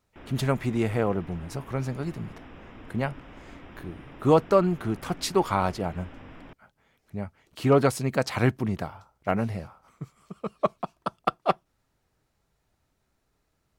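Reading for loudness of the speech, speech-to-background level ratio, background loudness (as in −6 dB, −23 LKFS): −27.5 LKFS, 19.5 dB, −47.0 LKFS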